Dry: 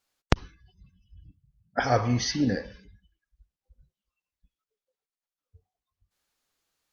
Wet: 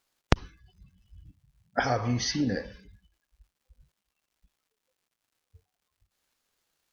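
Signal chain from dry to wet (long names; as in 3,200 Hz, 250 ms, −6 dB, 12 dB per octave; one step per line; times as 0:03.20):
0:01.84–0:02.56: downward compressor, threshold −23 dBFS, peak gain reduction 6.5 dB
surface crackle 310 per second −64 dBFS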